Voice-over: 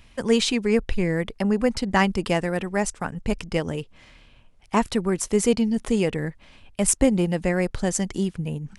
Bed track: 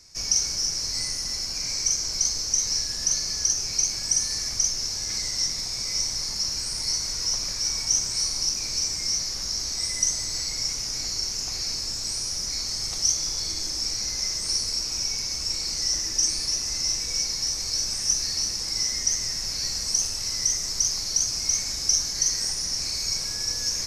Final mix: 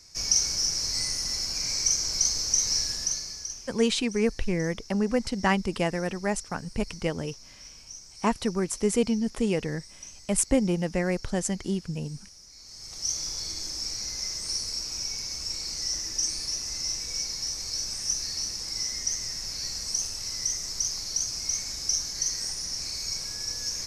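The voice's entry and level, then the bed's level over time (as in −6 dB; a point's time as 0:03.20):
3.50 s, −4.0 dB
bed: 0:02.89 −0.5 dB
0:03.86 −21 dB
0:12.54 −21 dB
0:13.16 −5 dB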